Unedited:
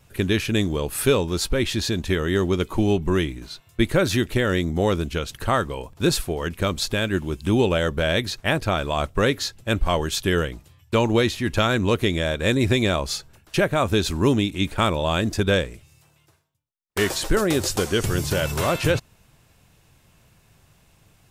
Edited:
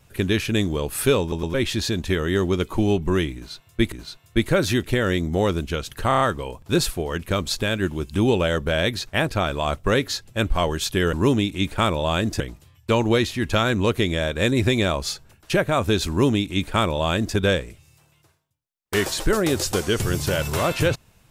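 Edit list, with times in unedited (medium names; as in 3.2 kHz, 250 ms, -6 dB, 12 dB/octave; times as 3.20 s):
1.21 s: stutter in place 0.11 s, 3 plays
3.35–3.92 s: loop, 2 plays
5.51 s: stutter 0.03 s, 5 plays
14.13–15.40 s: copy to 10.44 s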